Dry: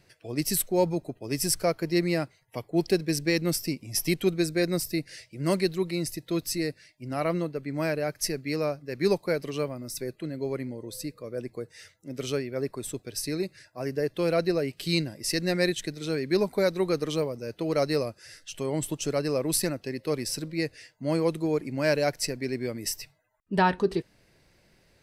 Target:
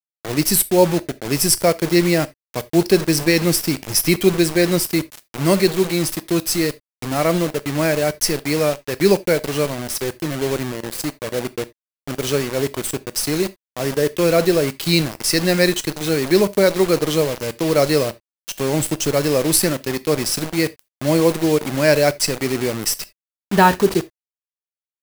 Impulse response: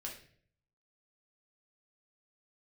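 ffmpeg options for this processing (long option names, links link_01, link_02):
-filter_complex "[0:a]acrusher=bits=5:mix=0:aa=0.000001,asplit=2[link_01][link_02];[1:a]atrim=start_sample=2205,atrim=end_sample=3969,highshelf=frequency=6600:gain=9.5[link_03];[link_02][link_03]afir=irnorm=-1:irlink=0,volume=-10dB[link_04];[link_01][link_04]amix=inputs=2:normalize=0,volume=8dB"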